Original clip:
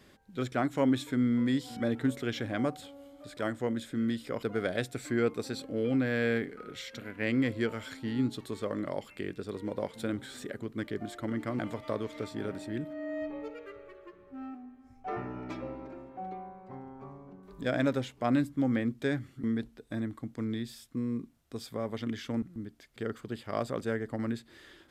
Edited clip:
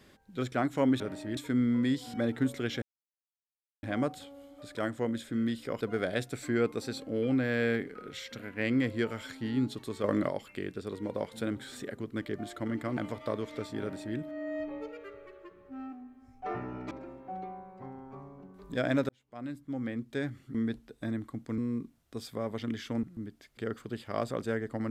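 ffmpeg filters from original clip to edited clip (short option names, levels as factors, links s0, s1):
-filter_complex "[0:a]asplit=9[s0][s1][s2][s3][s4][s5][s6][s7][s8];[s0]atrim=end=1.002[s9];[s1]atrim=start=12.428:end=12.802[s10];[s2]atrim=start=0.998:end=2.45,asetpts=PTS-STARTPTS,afade=t=out:st=1.448:d=0.004:c=hsin,apad=pad_dur=1.01[s11];[s3]atrim=start=2.45:end=8.662,asetpts=PTS-STARTPTS,afade=t=in:d=0.004:c=hsin[s12];[s4]atrim=start=8.658:end=8.912,asetpts=PTS-STARTPTS,volume=2[s13];[s5]atrim=start=8.908:end=15.532[s14];[s6]atrim=start=15.798:end=17.98,asetpts=PTS-STARTPTS,afade=t=out:st=2.178:d=0.004:c=hsin[s15];[s7]atrim=start=17.98:end=20.472,asetpts=PTS-STARTPTS,afade=t=in:d=1.61[s16];[s8]atrim=start=20.968[s17];[s9][s10]acrossfade=d=0.004:c1=hsin:c2=hsin[s18];[s11][s12]concat=n=2:v=0:a=1[s19];[s18][s19]acrossfade=d=0.004:c1=hsin:c2=hsin[s20];[s20][s13]acrossfade=d=0.004:c1=hsin:c2=hsin[s21];[s21][s14]acrossfade=d=0.004:c1=hsin:c2=hsin[s22];[s15][s16]concat=n=2:v=0:a=1[s23];[s22][s23]acrossfade=d=0.004:c1=hsin:c2=hsin[s24];[s24][s17]acrossfade=d=0.004:c1=hsin:c2=hsin"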